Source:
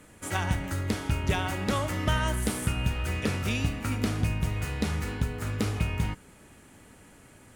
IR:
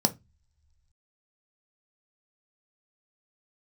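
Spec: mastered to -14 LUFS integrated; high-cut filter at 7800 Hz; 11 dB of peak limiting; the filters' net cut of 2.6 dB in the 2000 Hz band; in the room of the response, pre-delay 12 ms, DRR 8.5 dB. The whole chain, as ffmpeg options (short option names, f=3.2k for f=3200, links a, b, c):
-filter_complex "[0:a]lowpass=7.8k,equalizer=f=2k:t=o:g=-3.5,alimiter=level_in=1.5dB:limit=-24dB:level=0:latency=1,volume=-1.5dB,asplit=2[a][b];[1:a]atrim=start_sample=2205,adelay=12[c];[b][c]afir=irnorm=-1:irlink=0,volume=-18dB[d];[a][d]amix=inputs=2:normalize=0,volume=19.5dB"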